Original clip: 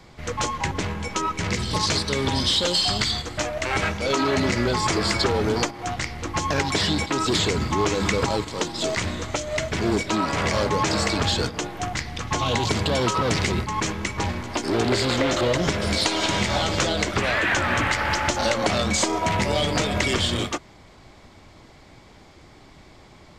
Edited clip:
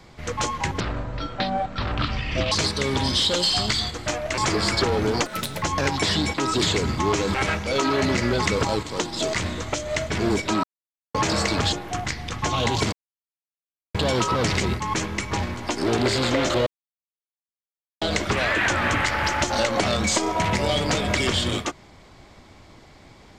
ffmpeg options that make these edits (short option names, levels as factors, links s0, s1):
-filter_complex "[0:a]asplit=14[s0][s1][s2][s3][s4][s5][s6][s7][s8][s9][s10][s11][s12][s13];[s0]atrim=end=0.804[s14];[s1]atrim=start=0.8:end=1.83,asetpts=PTS-STARTPTS,asetrate=26460,aresample=44100[s15];[s2]atrim=start=1.826:end=3.692[s16];[s3]atrim=start=4.798:end=5.684[s17];[s4]atrim=start=5.68:end=6.35,asetpts=PTS-STARTPTS,asetrate=80262,aresample=44100[s18];[s5]atrim=start=6.346:end=8.072[s19];[s6]atrim=start=3.688:end=4.802[s20];[s7]atrim=start=8.068:end=10.25,asetpts=PTS-STARTPTS,afade=t=out:st=2.178:d=0.004:c=hsin[s21];[s8]atrim=start=10.25:end=10.76,asetpts=PTS-STARTPTS,volume=0[s22];[s9]atrim=start=10.76:end=11.342,asetpts=PTS-STARTPTS,afade=t=in:d=0.004:c=hsin[s23];[s10]atrim=start=11.608:end=12.81,asetpts=PTS-STARTPTS,afade=t=out:st=1.198:d=0.004:c=hsin,apad=pad_dur=1.02[s24];[s11]atrim=start=12.81:end=15.53,asetpts=PTS-STARTPTS,afade=t=in:d=0.004:c=hsin,afade=t=out:st=2.716:d=0.004:c=hsin[s25];[s12]atrim=start=15.53:end=16.88,asetpts=PTS-STARTPTS,volume=0[s26];[s13]atrim=start=16.88,asetpts=PTS-STARTPTS,afade=t=in:d=0.004:c=hsin[s27];[s14][s15]acrossfade=d=0.004:c1=hsin:c2=hsin[s28];[s28][s16]acrossfade=d=0.004:c1=hsin:c2=hsin[s29];[s29][s17]acrossfade=d=0.004:c1=hsin:c2=hsin[s30];[s30][s18]acrossfade=d=0.004:c1=hsin:c2=hsin[s31];[s31][s19]acrossfade=d=0.004:c1=hsin:c2=hsin[s32];[s32][s20]acrossfade=d=0.004:c1=hsin:c2=hsin[s33];[s21][s22][s23]concat=n=3:v=0:a=1[s34];[s33][s34]acrossfade=d=0.004:c1=hsin:c2=hsin[s35];[s24][s25][s26][s27]concat=n=4:v=0:a=1[s36];[s35][s36]acrossfade=d=0.004:c1=hsin:c2=hsin"